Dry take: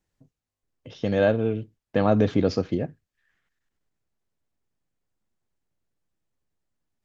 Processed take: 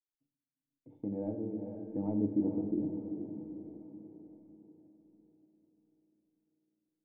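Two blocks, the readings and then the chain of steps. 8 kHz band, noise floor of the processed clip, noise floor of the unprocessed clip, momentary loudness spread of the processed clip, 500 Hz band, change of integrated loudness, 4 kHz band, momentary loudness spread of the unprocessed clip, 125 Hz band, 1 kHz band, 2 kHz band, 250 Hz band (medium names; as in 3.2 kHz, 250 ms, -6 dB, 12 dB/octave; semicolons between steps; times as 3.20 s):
no reading, under -85 dBFS, under -85 dBFS, 19 LU, -17.0 dB, -12.0 dB, under -40 dB, 11 LU, -14.5 dB, -21.0 dB, under -40 dB, -6.5 dB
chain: one-sided wavefolder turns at -13.5 dBFS; gate -48 dBFS, range -18 dB; cascade formant filter u; echo that smears into a reverb 454 ms, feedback 46%, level -7 dB; simulated room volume 260 m³, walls mixed, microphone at 0.57 m; tape noise reduction on one side only encoder only; trim -5 dB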